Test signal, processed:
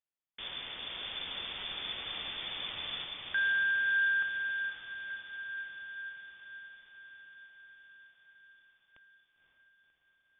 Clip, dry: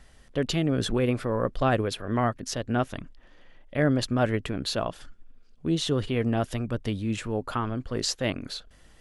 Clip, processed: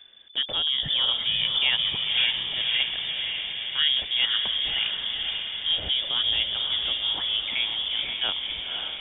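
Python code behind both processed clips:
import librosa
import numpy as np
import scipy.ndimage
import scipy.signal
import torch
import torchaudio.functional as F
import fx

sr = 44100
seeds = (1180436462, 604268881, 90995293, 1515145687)

y = fx.freq_invert(x, sr, carrier_hz=3500)
y = fx.echo_diffused(y, sr, ms=539, feedback_pct=67, wet_db=-4.0)
y = y * 10.0 ** (-1.0 / 20.0)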